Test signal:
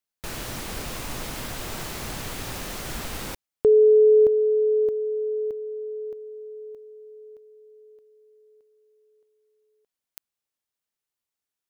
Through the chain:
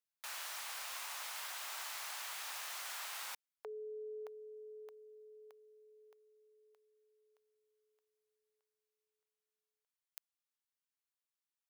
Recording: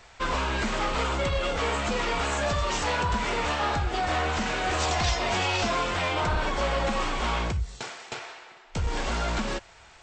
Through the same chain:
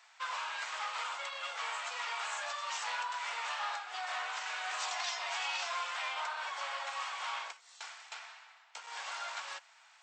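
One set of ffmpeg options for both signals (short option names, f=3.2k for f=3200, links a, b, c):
-af "highpass=f=830:w=0.5412,highpass=f=830:w=1.3066,volume=-8dB"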